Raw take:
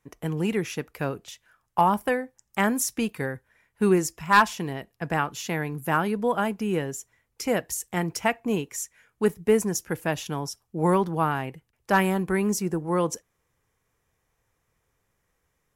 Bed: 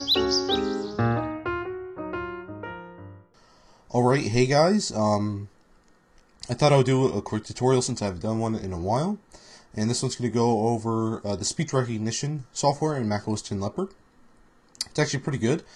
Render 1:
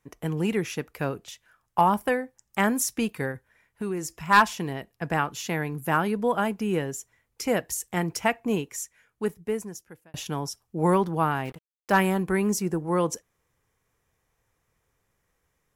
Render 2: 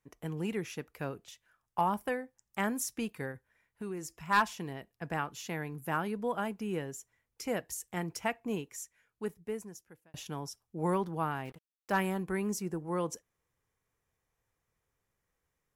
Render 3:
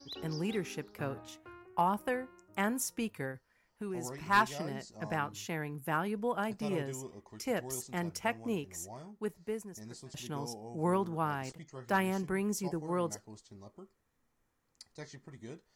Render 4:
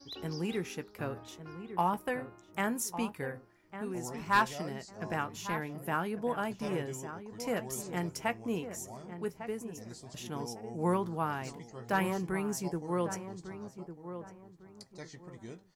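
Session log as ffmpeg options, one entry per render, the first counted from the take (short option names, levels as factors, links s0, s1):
-filter_complex "[0:a]asettb=1/sr,asplit=3[s0][s1][s2];[s0]atrim=end=3.314[s3];[s1]atrim=start=3.31:end=4.28,asetpts=PTS-STARTPTS,afade=t=in:d=0.004:c=qsin,afade=t=out:st=0.966:d=0.004:c=qsin,acompressor=threshold=0.0282:ratio=2.5:attack=3.2:release=140:knee=1:detection=peak[s4];[s2]atrim=start=4.276[s5];[s3][s4]acrossfade=d=0.004:c1=hsin:c2=qsin[s6];[s6][s5]acrossfade=d=0.004:c1=qsin:c2=hsin,asettb=1/sr,asplit=3[s7][s8][s9];[s7]atrim=end=11.454[s10];[s8]atrim=start=11.45:end=11.92,asetpts=PTS-STARTPTS,afade=t=in:d=0.004:c=qsin,afade=t=out:st=0.466:d=0.004:c=qsin,acrusher=bits=6:mix=0:aa=0.5[s11];[s9]atrim=start=11.916[s12];[s10][s11]acrossfade=d=0.004:c1=hsin:c2=qsin[s13];[s13][s12]acrossfade=d=0.004:c1=qsin:c2=hsin,asplit=2[s14][s15];[s14]atrim=end=10.14,asetpts=PTS-STARTPTS,afade=t=out:st=8.52:d=1.62[s16];[s15]atrim=start=10.14,asetpts=PTS-STARTPTS,afade=t=in:d=0.004:c=hsin[s17];[s16][s17]concat=n=2:v=0:a=1"
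-af "volume=0.355"
-filter_complex "[1:a]volume=0.0668[s0];[0:a][s0]amix=inputs=2:normalize=0"
-filter_complex "[0:a]asplit=2[s0][s1];[s1]adelay=17,volume=0.224[s2];[s0][s2]amix=inputs=2:normalize=0,asplit=2[s3][s4];[s4]adelay=1152,lowpass=f=1500:p=1,volume=0.316,asplit=2[s5][s6];[s6]adelay=1152,lowpass=f=1500:p=1,volume=0.3,asplit=2[s7][s8];[s8]adelay=1152,lowpass=f=1500:p=1,volume=0.3[s9];[s3][s5][s7][s9]amix=inputs=4:normalize=0"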